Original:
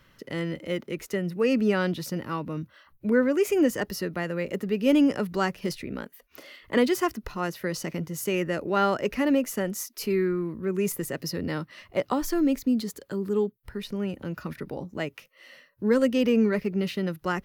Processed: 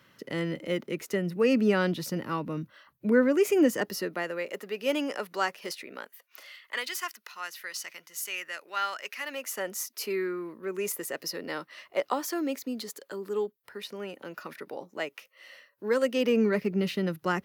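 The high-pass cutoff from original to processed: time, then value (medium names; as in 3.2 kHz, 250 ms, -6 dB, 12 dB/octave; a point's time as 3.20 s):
3.60 s 140 Hz
4.52 s 570 Hz
5.91 s 570 Hz
6.82 s 1.5 kHz
9.22 s 1.5 kHz
9.72 s 460 Hz
16.02 s 460 Hz
16.76 s 130 Hz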